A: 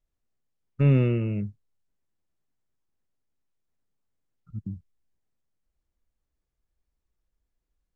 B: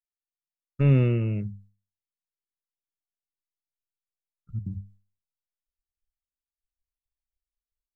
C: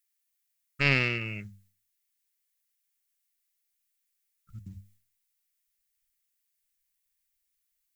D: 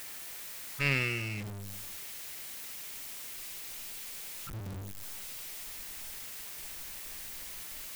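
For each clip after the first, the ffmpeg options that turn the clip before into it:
ffmpeg -i in.wav -af "asubboost=boost=3:cutoff=140,agate=range=-33dB:threshold=-50dB:ratio=3:detection=peak,bandreject=frequency=50:width_type=h:width=6,bandreject=frequency=100:width_type=h:width=6,bandreject=frequency=150:width_type=h:width=6,bandreject=frequency=200:width_type=h:width=6" out.wav
ffmpeg -i in.wav -af "equalizer=frequency=125:width_type=o:width=1:gain=-7,equalizer=frequency=250:width_type=o:width=1:gain=-4,equalizer=frequency=500:width_type=o:width=1:gain=-5,equalizer=frequency=2000:width_type=o:width=1:gain=9,aeval=exprs='0.224*(cos(1*acos(clip(val(0)/0.224,-1,1)))-cos(1*PI/2))+0.0355*(cos(3*acos(clip(val(0)/0.224,-1,1)))-cos(3*PI/2))':channel_layout=same,crystalizer=i=9:c=0" out.wav
ffmpeg -i in.wav -af "aeval=exprs='val(0)+0.5*0.0316*sgn(val(0))':channel_layout=same,volume=-6dB" out.wav

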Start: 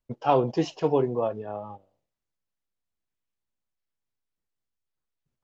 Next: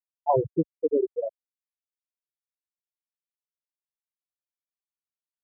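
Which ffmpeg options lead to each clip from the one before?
ffmpeg -i in.wav -af "afftfilt=real='re*gte(hypot(re,im),0.398)':imag='im*gte(hypot(re,im),0.398)':win_size=1024:overlap=0.75,equalizer=frequency=68:width=0.55:gain=7.5" out.wav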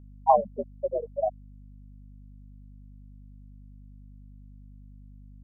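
ffmpeg -i in.wav -af "lowshelf=frequency=470:width_type=q:width=3:gain=-7,afreqshift=79,aeval=exprs='val(0)+0.00447*(sin(2*PI*50*n/s)+sin(2*PI*2*50*n/s)/2+sin(2*PI*3*50*n/s)/3+sin(2*PI*4*50*n/s)/4+sin(2*PI*5*50*n/s)/5)':channel_layout=same" out.wav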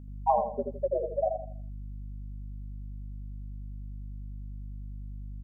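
ffmpeg -i in.wav -filter_complex "[0:a]acompressor=threshold=-33dB:ratio=2,asplit=2[link_01][link_02];[link_02]adelay=81,lowpass=frequency=1000:poles=1,volume=-4dB,asplit=2[link_03][link_04];[link_04]adelay=81,lowpass=frequency=1000:poles=1,volume=0.4,asplit=2[link_05][link_06];[link_06]adelay=81,lowpass=frequency=1000:poles=1,volume=0.4,asplit=2[link_07][link_08];[link_08]adelay=81,lowpass=frequency=1000:poles=1,volume=0.4,asplit=2[link_09][link_10];[link_10]adelay=81,lowpass=frequency=1000:poles=1,volume=0.4[link_11];[link_03][link_05][link_07][link_09][link_11]amix=inputs=5:normalize=0[link_12];[link_01][link_12]amix=inputs=2:normalize=0,volume=4dB" out.wav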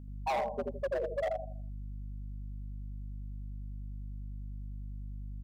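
ffmpeg -i in.wav -af "asoftclip=type=hard:threshold=-27dB,volume=-1.5dB" out.wav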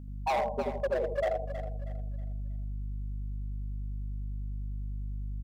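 ffmpeg -i in.wav -af "aecho=1:1:319|638|957|1276:0.282|0.093|0.0307|0.0101,volume=3dB" out.wav

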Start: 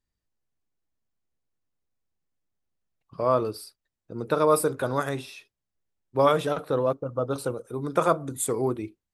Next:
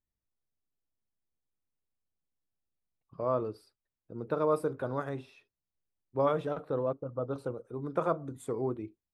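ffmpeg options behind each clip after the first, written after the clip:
ffmpeg -i in.wav -af "lowpass=frequency=1100:poles=1,volume=-6dB" out.wav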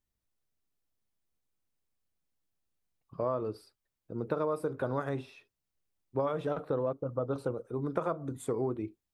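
ffmpeg -i in.wav -af "acompressor=threshold=-31dB:ratio=10,volume=4dB" out.wav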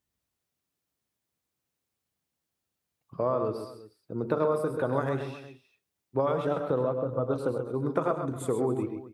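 ffmpeg -i in.wav -af "highpass=76,aecho=1:1:100|131|272|361:0.266|0.398|0.106|0.126,volume=4dB" out.wav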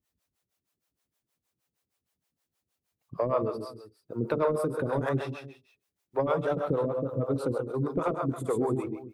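ffmpeg -i in.wav -filter_complex "[0:a]asoftclip=type=tanh:threshold=-15.5dB,acrossover=split=420[link_01][link_02];[link_01]aeval=exprs='val(0)*(1-1/2+1/2*cos(2*PI*6.4*n/s))':channel_layout=same[link_03];[link_02]aeval=exprs='val(0)*(1-1/2-1/2*cos(2*PI*6.4*n/s))':channel_layout=same[link_04];[link_03][link_04]amix=inputs=2:normalize=0,volume=6dB" out.wav

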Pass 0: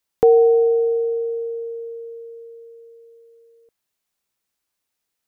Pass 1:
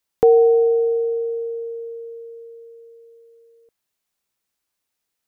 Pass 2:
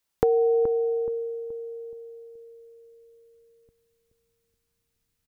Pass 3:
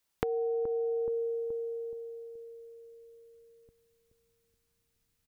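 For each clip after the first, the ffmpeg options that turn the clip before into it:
ffmpeg -i in.wav -af anull out.wav
ffmpeg -i in.wav -filter_complex "[0:a]asubboost=boost=11.5:cutoff=160,acompressor=threshold=-19dB:ratio=6,asplit=2[link_01][link_02];[link_02]adelay=425,lowpass=frequency=920:poles=1,volume=-8.5dB,asplit=2[link_03][link_04];[link_04]adelay=425,lowpass=frequency=920:poles=1,volume=0.43,asplit=2[link_05][link_06];[link_06]adelay=425,lowpass=frequency=920:poles=1,volume=0.43,asplit=2[link_07][link_08];[link_08]adelay=425,lowpass=frequency=920:poles=1,volume=0.43,asplit=2[link_09][link_10];[link_10]adelay=425,lowpass=frequency=920:poles=1,volume=0.43[link_11];[link_01][link_03][link_05][link_07][link_09][link_11]amix=inputs=6:normalize=0" out.wav
ffmpeg -i in.wav -af "acompressor=threshold=-29dB:ratio=12" out.wav

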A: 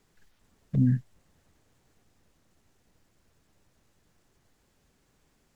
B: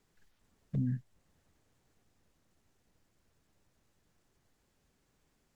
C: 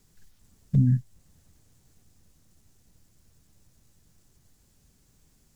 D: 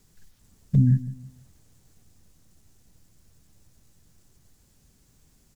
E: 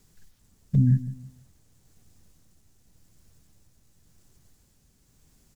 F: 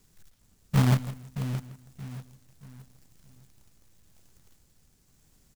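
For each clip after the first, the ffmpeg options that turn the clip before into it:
ffmpeg -i in.wav -af "alimiter=limit=-19dB:level=0:latency=1:release=479,volume=-6dB" out.wav
ffmpeg -i in.wav -af "bass=frequency=250:gain=11,treble=frequency=4000:gain=12,volume=3dB" out.wav
ffmpeg -i in.wav -filter_complex "[0:a]asplit=2[link_01][link_02];[link_02]adelay=163,lowpass=frequency=2000:poles=1,volume=-15.5dB,asplit=2[link_03][link_04];[link_04]adelay=163,lowpass=frequency=2000:poles=1,volume=0.33,asplit=2[link_05][link_06];[link_06]adelay=163,lowpass=frequency=2000:poles=1,volume=0.33[link_07];[link_01][link_03][link_05][link_07]amix=inputs=4:normalize=0,volume=2dB" out.wav
ffmpeg -i in.wav -af "tremolo=f=0.92:d=0.31" out.wav
ffmpeg -i in.wav -af "aecho=1:1:624|1248|1872|2496:0.355|0.121|0.041|0.0139,acrusher=bits=2:mode=log:mix=0:aa=0.000001,volume=-2.5dB" out.wav

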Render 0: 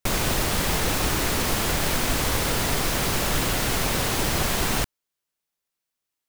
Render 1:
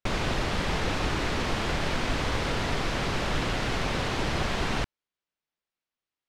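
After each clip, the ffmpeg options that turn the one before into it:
ffmpeg -i in.wav -af "lowpass=4000,volume=-3dB" out.wav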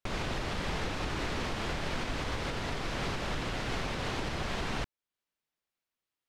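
ffmpeg -i in.wav -af "alimiter=limit=-24dB:level=0:latency=1:release=380" out.wav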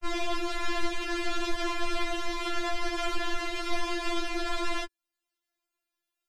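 ffmpeg -i in.wav -af "afftfilt=real='re*4*eq(mod(b,16),0)':imag='im*4*eq(mod(b,16),0)':win_size=2048:overlap=0.75,volume=6dB" out.wav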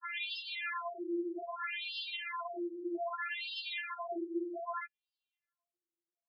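ffmpeg -i in.wav -af "afftfilt=real='re*between(b*sr/1024,340*pow(3700/340,0.5+0.5*sin(2*PI*0.63*pts/sr))/1.41,340*pow(3700/340,0.5+0.5*sin(2*PI*0.63*pts/sr))*1.41)':imag='im*between(b*sr/1024,340*pow(3700/340,0.5+0.5*sin(2*PI*0.63*pts/sr))/1.41,340*pow(3700/340,0.5+0.5*sin(2*PI*0.63*pts/sr))*1.41)':win_size=1024:overlap=0.75" out.wav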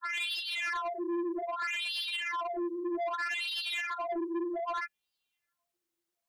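ffmpeg -i in.wav -af "asoftclip=type=tanh:threshold=-38dB,volume=8.5dB" out.wav

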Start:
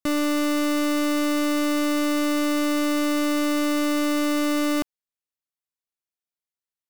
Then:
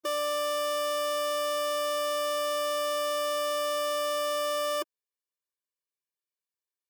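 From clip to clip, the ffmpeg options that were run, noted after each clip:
ffmpeg -i in.wav -af "afftfilt=real='re*eq(mod(floor(b*sr/1024/310),2),1)':imag='im*eq(mod(floor(b*sr/1024/310),2),1)':win_size=1024:overlap=0.75" out.wav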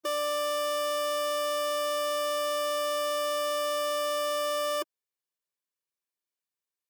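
ffmpeg -i in.wav -af "highpass=110" out.wav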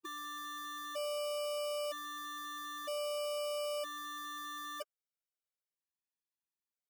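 ffmpeg -i in.wav -af "afftfilt=real='re*gt(sin(2*PI*0.52*pts/sr)*(1-2*mod(floor(b*sr/1024/400),2)),0)':imag='im*gt(sin(2*PI*0.52*pts/sr)*(1-2*mod(floor(b*sr/1024/400),2)),0)':win_size=1024:overlap=0.75,volume=-6.5dB" out.wav

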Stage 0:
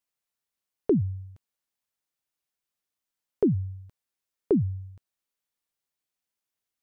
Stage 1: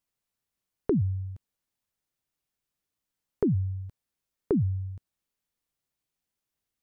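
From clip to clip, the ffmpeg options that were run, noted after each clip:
ffmpeg -i in.wav -af "lowshelf=frequency=290:gain=10,acompressor=threshold=-29dB:ratio=2" out.wav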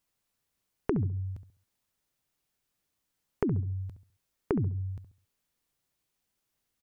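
ffmpeg -i in.wav -filter_complex "[0:a]acompressor=threshold=-32dB:ratio=6,asplit=2[link_01][link_02];[link_02]adelay=68,lowpass=frequency=1000:poles=1,volume=-10dB,asplit=2[link_03][link_04];[link_04]adelay=68,lowpass=frequency=1000:poles=1,volume=0.33,asplit=2[link_05][link_06];[link_06]adelay=68,lowpass=frequency=1000:poles=1,volume=0.33,asplit=2[link_07][link_08];[link_08]adelay=68,lowpass=frequency=1000:poles=1,volume=0.33[link_09];[link_01][link_03][link_05][link_07][link_09]amix=inputs=5:normalize=0,volume=5dB" out.wav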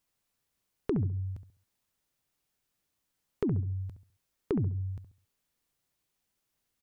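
ffmpeg -i in.wav -af "asoftclip=type=tanh:threshold=-16.5dB" out.wav

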